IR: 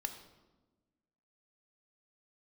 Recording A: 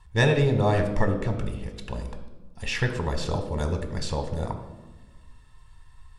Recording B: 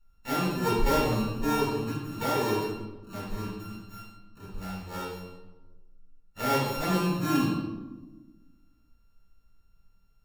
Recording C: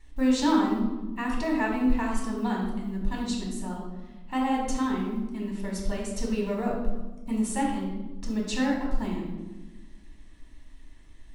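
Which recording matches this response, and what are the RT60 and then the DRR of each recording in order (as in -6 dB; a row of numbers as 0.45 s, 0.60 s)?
A; 1.2 s, 1.2 s, 1.2 s; 6.5 dB, -8.5 dB, -2.0 dB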